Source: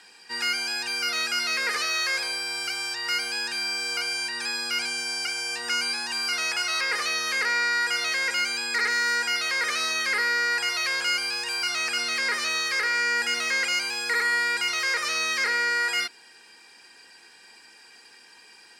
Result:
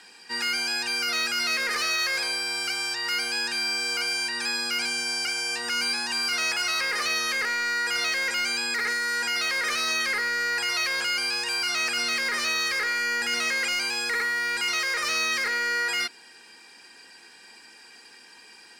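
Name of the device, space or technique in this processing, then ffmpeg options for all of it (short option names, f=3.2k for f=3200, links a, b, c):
limiter into clipper: -af "equalizer=f=240:w=1.5:g=3.5,alimiter=limit=-18dB:level=0:latency=1:release=15,asoftclip=type=hard:threshold=-22dB,volume=1.5dB"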